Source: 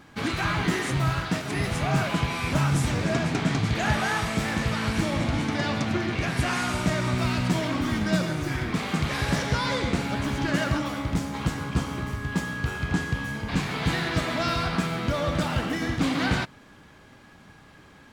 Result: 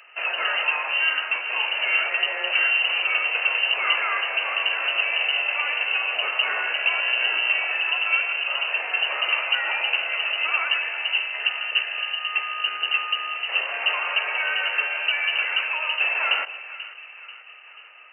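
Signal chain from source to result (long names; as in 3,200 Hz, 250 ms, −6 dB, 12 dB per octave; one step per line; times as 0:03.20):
echo with a time of its own for lows and highs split 1,700 Hz, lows 487 ms, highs 159 ms, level −14.5 dB
voice inversion scrambler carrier 2,900 Hz
high-pass filter 460 Hz 24 dB per octave
level +1.5 dB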